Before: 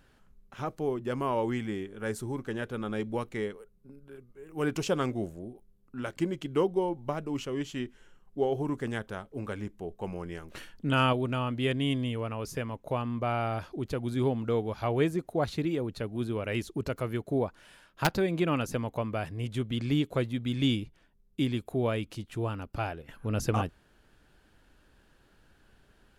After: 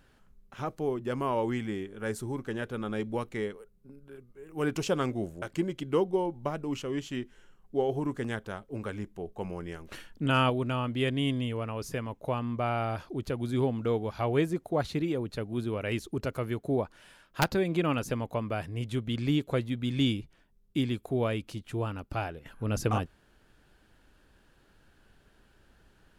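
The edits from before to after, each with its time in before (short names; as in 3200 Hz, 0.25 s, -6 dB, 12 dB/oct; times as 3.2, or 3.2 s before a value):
5.42–6.05 cut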